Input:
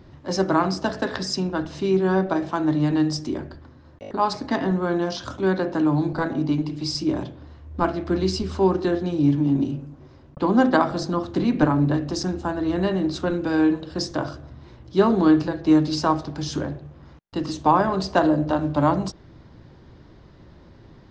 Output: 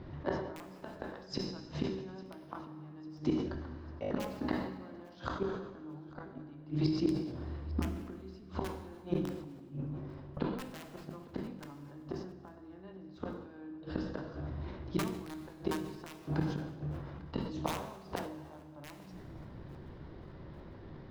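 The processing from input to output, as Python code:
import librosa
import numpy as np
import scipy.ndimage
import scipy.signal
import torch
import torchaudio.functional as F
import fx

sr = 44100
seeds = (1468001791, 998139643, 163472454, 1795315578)

p1 = scipy.signal.sosfilt(scipy.signal.butter(2, 4500.0, 'lowpass', fs=sr, output='sos'), x)
p2 = fx.high_shelf(p1, sr, hz=3300.0, db=-7.5)
p3 = fx.hum_notches(p2, sr, base_hz=60, count=5)
p4 = fx.rider(p3, sr, range_db=4, speed_s=0.5)
p5 = p3 + (p4 * librosa.db_to_amplitude(-2.5))
p6 = (np.mod(10.0 ** (5.5 / 20.0) * p5 + 1.0, 2.0) - 1.0) / 10.0 ** (5.5 / 20.0)
p7 = fx.gate_flip(p6, sr, shuts_db=-14.0, range_db=-29)
p8 = p7 + fx.echo_feedback(p7, sr, ms=849, feedback_pct=48, wet_db=-22, dry=0)
p9 = fx.rev_plate(p8, sr, seeds[0], rt60_s=1.8, hf_ratio=0.95, predelay_ms=0, drr_db=5.5)
p10 = fx.sustainer(p9, sr, db_per_s=56.0)
y = p10 * librosa.db_to_amplitude(-6.0)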